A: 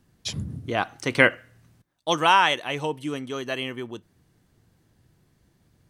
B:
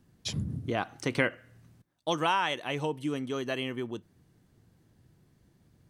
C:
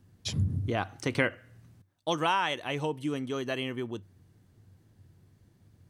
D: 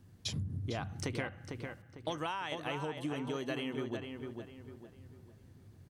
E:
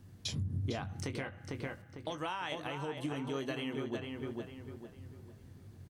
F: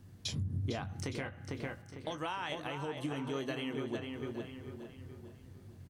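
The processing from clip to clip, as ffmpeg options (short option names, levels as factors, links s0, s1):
-af "equalizer=f=190:w=0.39:g=4.5,acompressor=threshold=0.0631:ratio=2,volume=0.631"
-af "equalizer=f=96:t=o:w=0.23:g=13.5"
-filter_complex "[0:a]acompressor=threshold=0.0158:ratio=6,asplit=2[s0][s1];[s1]adelay=451,lowpass=f=2700:p=1,volume=0.562,asplit=2[s2][s3];[s3]adelay=451,lowpass=f=2700:p=1,volume=0.39,asplit=2[s4][s5];[s5]adelay=451,lowpass=f=2700:p=1,volume=0.39,asplit=2[s6][s7];[s7]adelay=451,lowpass=f=2700:p=1,volume=0.39,asplit=2[s8][s9];[s9]adelay=451,lowpass=f=2700:p=1,volume=0.39[s10];[s2][s4][s6][s8][s10]amix=inputs=5:normalize=0[s11];[s0][s11]amix=inputs=2:normalize=0,volume=1.12"
-filter_complex "[0:a]alimiter=level_in=1.78:limit=0.0631:level=0:latency=1:release=487,volume=0.562,asplit=2[s0][s1];[s1]adelay=22,volume=0.316[s2];[s0][s2]amix=inputs=2:normalize=0,volume=1.41"
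-af "aecho=1:1:863:0.168"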